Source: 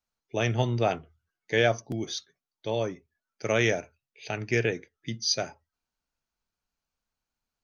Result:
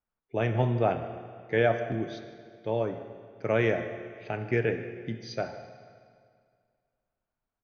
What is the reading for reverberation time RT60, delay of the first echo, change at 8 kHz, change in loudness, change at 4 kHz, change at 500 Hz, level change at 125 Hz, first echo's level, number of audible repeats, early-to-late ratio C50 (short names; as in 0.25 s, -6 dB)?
2.1 s, 0.152 s, n/a, -1.0 dB, -13.0 dB, +0.5 dB, 0.0 dB, -18.5 dB, 1, 8.5 dB